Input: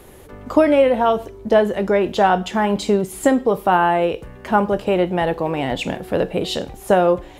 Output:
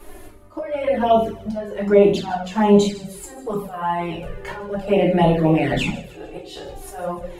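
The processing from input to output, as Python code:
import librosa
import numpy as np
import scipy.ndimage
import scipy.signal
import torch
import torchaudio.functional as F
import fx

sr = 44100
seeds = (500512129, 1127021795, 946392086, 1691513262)

y = fx.peak_eq(x, sr, hz=3700.0, db=-2.0, octaves=0.29)
y = fx.hum_notches(y, sr, base_hz=60, count=9)
y = fx.auto_swell(y, sr, attack_ms=591.0)
y = fx.echo_wet_highpass(y, sr, ms=150, feedback_pct=52, hz=2900.0, wet_db=-15)
y = fx.room_shoebox(y, sr, seeds[0], volume_m3=50.0, walls='mixed', distance_m=0.94)
y = fx.env_flanger(y, sr, rest_ms=3.5, full_db=-10.0)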